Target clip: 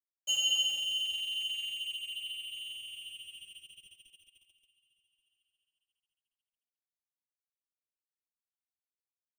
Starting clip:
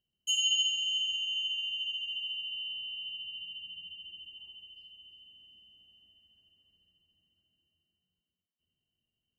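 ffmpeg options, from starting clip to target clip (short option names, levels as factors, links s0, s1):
-af "aeval=exprs='sgn(val(0))*max(abs(val(0))-0.00596,0)':c=same,asubboost=boost=3:cutoff=64,aecho=1:1:1129|2258:0.0668|0.0167"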